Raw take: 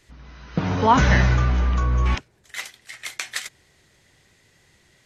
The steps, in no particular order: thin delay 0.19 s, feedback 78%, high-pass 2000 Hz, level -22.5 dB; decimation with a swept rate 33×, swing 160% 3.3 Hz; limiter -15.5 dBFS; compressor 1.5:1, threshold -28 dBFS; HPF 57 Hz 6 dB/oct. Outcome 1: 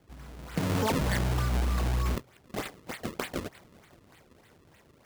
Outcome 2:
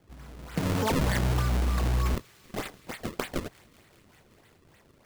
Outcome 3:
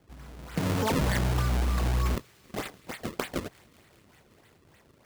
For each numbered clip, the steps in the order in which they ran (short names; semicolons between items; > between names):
limiter > compressor > thin delay > decimation with a swept rate > HPF; HPF > decimation with a swept rate > limiter > thin delay > compressor; decimation with a swept rate > HPF > limiter > compressor > thin delay